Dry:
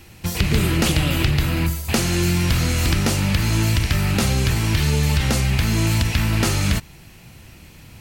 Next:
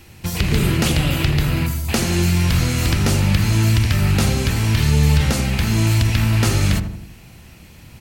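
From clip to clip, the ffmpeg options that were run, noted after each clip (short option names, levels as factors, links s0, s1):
-filter_complex "[0:a]asplit=2[s0][s1];[s1]adelay=81,lowpass=f=980:p=1,volume=0.501,asplit=2[s2][s3];[s3]adelay=81,lowpass=f=980:p=1,volume=0.54,asplit=2[s4][s5];[s5]adelay=81,lowpass=f=980:p=1,volume=0.54,asplit=2[s6][s7];[s7]adelay=81,lowpass=f=980:p=1,volume=0.54,asplit=2[s8][s9];[s9]adelay=81,lowpass=f=980:p=1,volume=0.54,asplit=2[s10][s11];[s11]adelay=81,lowpass=f=980:p=1,volume=0.54,asplit=2[s12][s13];[s13]adelay=81,lowpass=f=980:p=1,volume=0.54[s14];[s0][s2][s4][s6][s8][s10][s12][s14]amix=inputs=8:normalize=0"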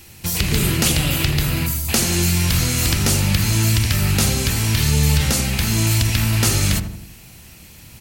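-af "highshelf=f=4100:g=11.5,volume=0.794"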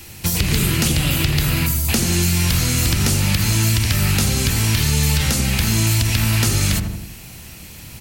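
-filter_complex "[0:a]acrossover=split=370|780[s0][s1][s2];[s0]acompressor=threshold=0.0891:ratio=4[s3];[s1]acompressor=threshold=0.00708:ratio=4[s4];[s2]acompressor=threshold=0.0562:ratio=4[s5];[s3][s4][s5]amix=inputs=3:normalize=0,volume=1.78"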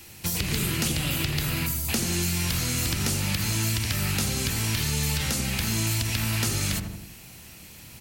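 -af "lowshelf=f=100:g=-7,volume=0.447"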